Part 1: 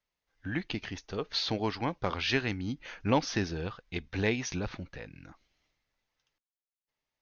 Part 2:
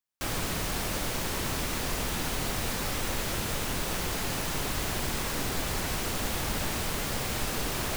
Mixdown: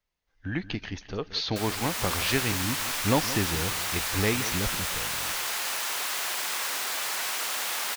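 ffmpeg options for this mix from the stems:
-filter_complex "[0:a]volume=1.5dB,asplit=2[a][b];[b]volume=-14.5dB[c];[1:a]highpass=950,dynaudnorm=f=210:g=5:m=6dB,adelay=1350,volume=-2dB[d];[c]aecho=0:1:176|352|528|704|880:1|0.36|0.13|0.0467|0.0168[e];[a][d][e]amix=inputs=3:normalize=0,lowshelf=f=85:g=8"

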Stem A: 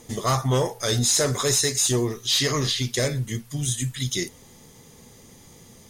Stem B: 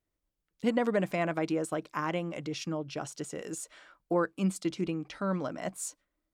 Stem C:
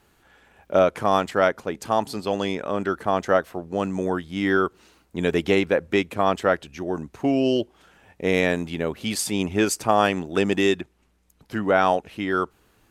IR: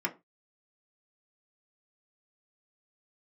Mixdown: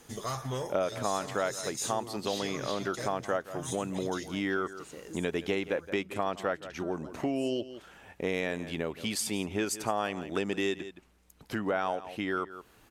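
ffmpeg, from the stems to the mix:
-filter_complex "[0:a]volume=-8dB,asplit=2[a][b];[b]volume=-19.5dB[c];[1:a]acompressor=threshold=-34dB:ratio=6,adelay=1600,volume=-4.5dB[d];[2:a]volume=2dB,asplit=2[e][f];[f]volume=-18dB[g];[c][g]amix=inputs=2:normalize=0,aecho=0:1:168:1[h];[a][d][e][h]amix=inputs=4:normalize=0,lowshelf=f=230:g=-4,acompressor=threshold=-33dB:ratio=2.5"

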